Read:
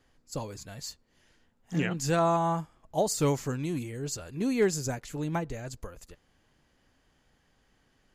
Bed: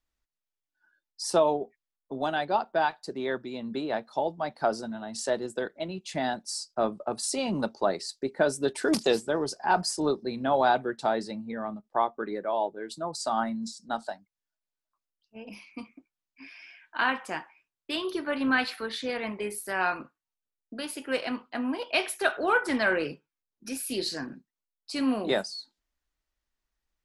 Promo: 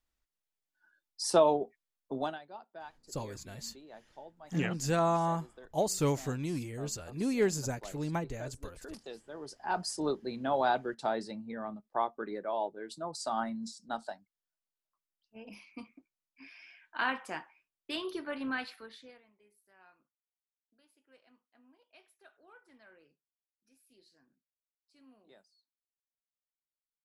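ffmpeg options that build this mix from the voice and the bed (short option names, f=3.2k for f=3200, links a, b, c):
-filter_complex "[0:a]adelay=2800,volume=-3dB[a];[1:a]volume=15dB,afade=t=out:st=2.16:d=0.23:silence=0.0944061,afade=t=in:st=9.26:d=0.75:silence=0.158489,afade=t=out:st=17.96:d=1.28:silence=0.0354813[b];[a][b]amix=inputs=2:normalize=0"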